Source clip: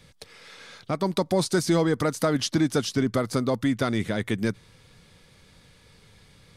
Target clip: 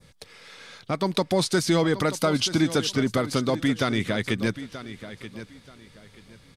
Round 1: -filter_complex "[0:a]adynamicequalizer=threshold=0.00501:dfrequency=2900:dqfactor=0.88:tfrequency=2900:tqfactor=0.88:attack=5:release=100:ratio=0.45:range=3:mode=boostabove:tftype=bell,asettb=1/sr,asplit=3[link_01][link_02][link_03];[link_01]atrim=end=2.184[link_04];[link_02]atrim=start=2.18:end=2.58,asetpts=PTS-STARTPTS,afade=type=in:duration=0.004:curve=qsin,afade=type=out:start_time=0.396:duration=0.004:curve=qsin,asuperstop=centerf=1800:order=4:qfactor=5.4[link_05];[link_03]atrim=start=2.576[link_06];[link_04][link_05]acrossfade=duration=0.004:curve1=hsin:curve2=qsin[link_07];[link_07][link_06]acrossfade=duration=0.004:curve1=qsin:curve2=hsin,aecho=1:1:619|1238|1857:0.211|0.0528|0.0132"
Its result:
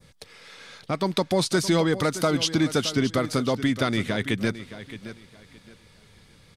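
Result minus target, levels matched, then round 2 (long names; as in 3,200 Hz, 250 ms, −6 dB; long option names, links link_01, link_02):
echo 312 ms early
-filter_complex "[0:a]adynamicequalizer=threshold=0.00501:dfrequency=2900:dqfactor=0.88:tfrequency=2900:tqfactor=0.88:attack=5:release=100:ratio=0.45:range=3:mode=boostabove:tftype=bell,asettb=1/sr,asplit=3[link_01][link_02][link_03];[link_01]atrim=end=2.184[link_04];[link_02]atrim=start=2.18:end=2.58,asetpts=PTS-STARTPTS,afade=type=in:duration=0.004:curve=qsin,afade=type=out:start_time=0.396:duration=0.004:curve=qsin,asuperstop=centerf=1800:order=4:qfactor=5.4[link_05];[link_03]atrim=start=2.576[link_06];[link_04][link_05]acrossfade=duration=0.004:curve1=hsin:curve2=qsin[link_07];[link_07][link_06]acrossfade=duration=0.004:curve1=qsin:curve2=hsin,aecho=1:1:931|1862|2793:0.211|0.0528|0.0132"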